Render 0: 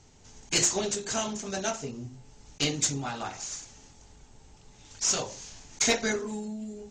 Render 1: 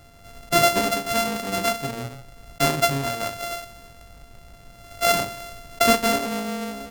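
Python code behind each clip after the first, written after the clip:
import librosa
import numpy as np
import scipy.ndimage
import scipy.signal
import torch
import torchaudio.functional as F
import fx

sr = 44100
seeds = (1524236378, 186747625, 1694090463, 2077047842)

y = np.r_[np.sort(x[:len(x) // 64 * 64].reshape(-1, 64), axis=1).ravel(), x[len(x) // 64 * 64:]]
y = y * librosa.db_to_amplitude(7.5)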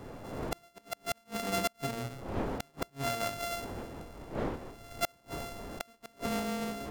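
y = fx.dmg_wind(x, sr, seeds[0], corner_hz=540.0, level_db=-34.0)
y = fx.gate_flip(y, sr, shuts_db=-11.0, range_db=-37)
y = y * librosa.db_to_amplitude(-6.0)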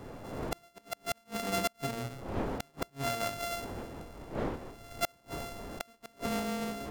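y = x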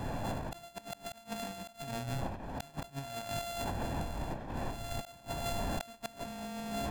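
y = x + 0.56 * np.pad(x, (int(1.2 * sr / 1000.0), 0))[:len(x)]
y = fx.over_compress(y, sr, threshold_db=-41.0, ratio=-1.0)
y = y * librosa.db_to_amplitude(2.5)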